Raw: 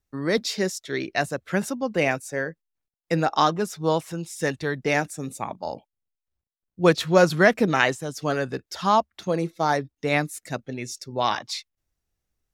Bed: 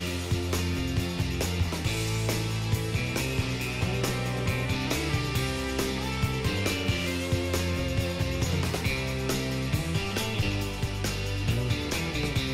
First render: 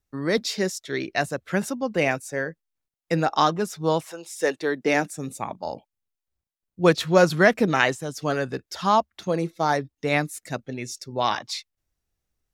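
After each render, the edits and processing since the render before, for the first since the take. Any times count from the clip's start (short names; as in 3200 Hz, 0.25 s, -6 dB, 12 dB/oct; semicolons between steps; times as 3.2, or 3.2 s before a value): 4.05–5.12 resonant high-pass 660 Hz -> 190 Hz, resonance Q 1.5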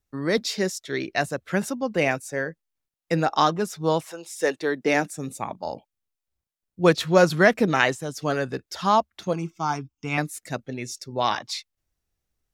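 9.33–10.18 fixed phaser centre 2700 Hz, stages 8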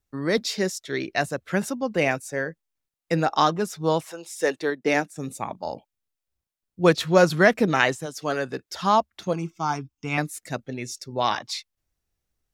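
4.7–5.16 upward expander, over -37 dBFS; 8.05–8.68 HPF 430 Hz -> 140 Hz 6 dB/oct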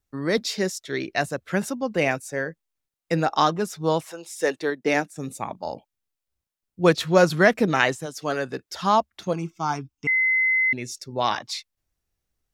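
10.07–10.73 bleep 2050 Hz -17.5 dBFS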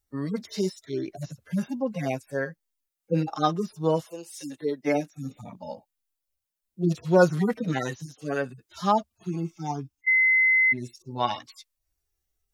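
median-filter separation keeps harmonic; high shelf 6200 Hz +8 dB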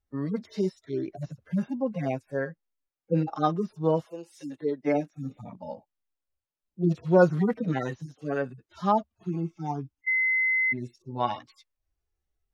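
LPF 1500 Hz 6 dB/oct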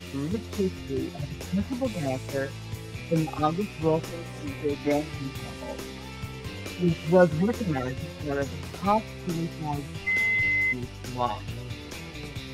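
add bed -9 dB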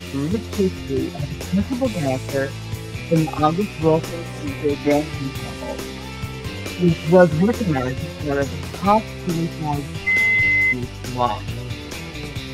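gain +7.5 dB; limiter -2 dBFS, peak gain reduction 2 dB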